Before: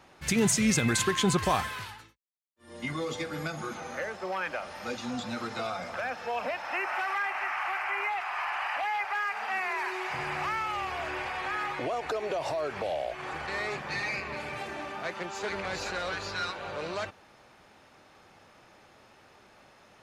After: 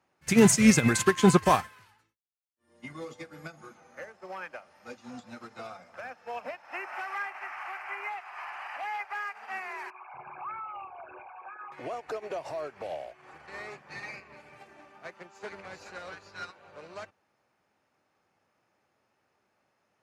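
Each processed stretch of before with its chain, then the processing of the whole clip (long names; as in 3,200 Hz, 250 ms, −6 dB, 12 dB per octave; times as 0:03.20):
0:09.90–0:11.72: spectral envelope exaggerated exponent 3 + Butterworth band-reject 1,900 Hz, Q 3.2
whole clip: high-pass filter 81 Hz; parametric band 3,600 Hz −5.5 dB 0.56 octaves; expander for the loud parts 2.5 to 1, over −39 dBFS; level +8.5 dB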